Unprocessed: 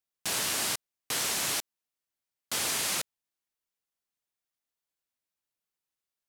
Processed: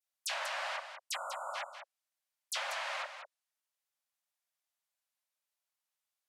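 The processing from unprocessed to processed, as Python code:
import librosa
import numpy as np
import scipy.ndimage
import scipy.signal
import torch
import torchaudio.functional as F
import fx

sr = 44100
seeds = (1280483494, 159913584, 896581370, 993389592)

p1 = fx.env_lowpass_down(x, sr, base_hz=2000.0, full_db=-27.0)
p2 = fx.spec_erase(p1, sr, start_s=1.13, length_s=0.4, low_hz=1500.0, high_hz=6800.0)
p3 = fx.brickwall_highpass(p2, sr, low_hz=520.0)
p4 = fx.dispersion(p3, sr, late='lows', ms=48.0, hz=2800.0)
y = p4 + fx.echo_single(p4, sr, ms=192, db=-9.5, dry=0)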